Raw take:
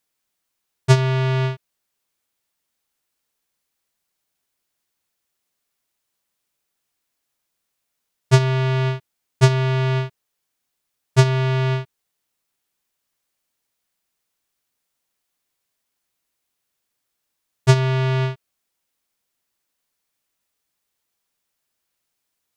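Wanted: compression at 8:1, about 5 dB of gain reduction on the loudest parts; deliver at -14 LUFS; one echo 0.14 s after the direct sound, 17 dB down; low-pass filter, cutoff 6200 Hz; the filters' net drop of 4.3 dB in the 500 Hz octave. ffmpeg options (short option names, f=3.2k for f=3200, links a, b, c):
-af "lowpass=6.2k,equalizer=f=500:t=o:g=-6.5,acompressor=threshold=-14dB:ratio=8,aecho=1:1:140:0.141,volume=8.5dB"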